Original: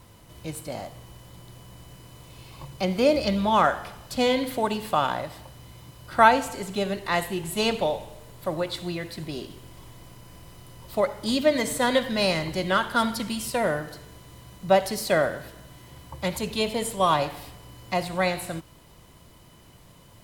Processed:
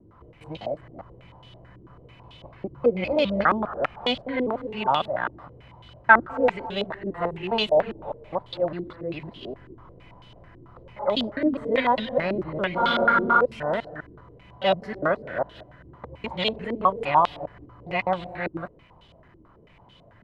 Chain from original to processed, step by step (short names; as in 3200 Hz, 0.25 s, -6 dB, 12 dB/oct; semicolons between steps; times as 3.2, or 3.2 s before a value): local time reversal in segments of 0.203 s; spectral freeze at 12.8, 0.61 s; stepped low-pass 9.1 Hz 340–3300 Hz; gain -3.5 dB